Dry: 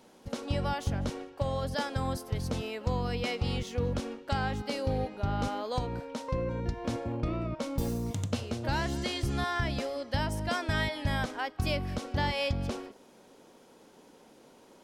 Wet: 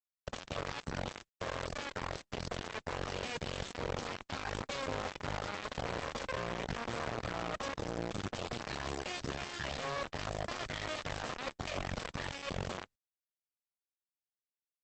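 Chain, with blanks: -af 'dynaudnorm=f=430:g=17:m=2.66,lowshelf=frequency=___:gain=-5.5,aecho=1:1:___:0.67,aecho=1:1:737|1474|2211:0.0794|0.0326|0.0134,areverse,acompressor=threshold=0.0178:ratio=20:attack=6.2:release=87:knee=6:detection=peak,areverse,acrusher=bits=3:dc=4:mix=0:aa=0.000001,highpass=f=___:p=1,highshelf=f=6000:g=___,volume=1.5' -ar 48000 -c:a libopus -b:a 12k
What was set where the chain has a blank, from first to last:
270, 1.7, 49, -9.5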